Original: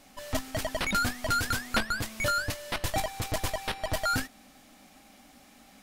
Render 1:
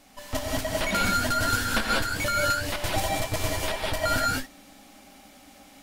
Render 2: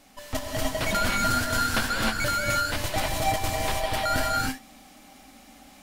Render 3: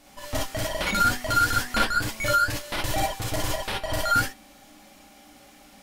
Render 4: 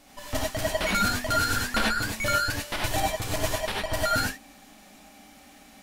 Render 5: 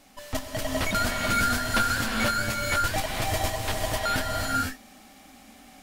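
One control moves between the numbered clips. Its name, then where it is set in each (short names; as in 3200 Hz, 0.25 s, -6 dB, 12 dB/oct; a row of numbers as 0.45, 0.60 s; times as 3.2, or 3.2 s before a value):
non-linear reverb, gate: 220, 340, 80, 120, 520 ms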